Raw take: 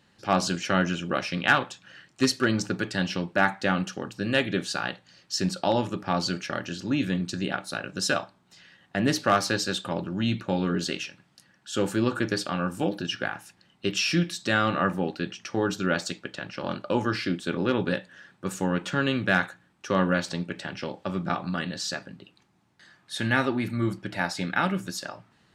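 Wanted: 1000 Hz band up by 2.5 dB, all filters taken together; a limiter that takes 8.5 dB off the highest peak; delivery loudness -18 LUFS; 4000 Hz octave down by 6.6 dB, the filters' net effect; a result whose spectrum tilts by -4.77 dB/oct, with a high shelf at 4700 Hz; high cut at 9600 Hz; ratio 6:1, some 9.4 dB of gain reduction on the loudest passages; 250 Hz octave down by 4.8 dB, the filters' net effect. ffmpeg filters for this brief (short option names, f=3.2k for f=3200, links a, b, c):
-af "lowpass=9.6k,equalizer=f=250:t=o:g=-7,equalizer=f=1k:t=o:g=4.5,equalizer=f=4k:t=o:g=-7.5,highshelf=f=4.7k:g=-3.5,acompressor=threshold=-25dB:ratio=6,volume=16dB,alimiter=limit=-3.5dB:level=0:latency=1"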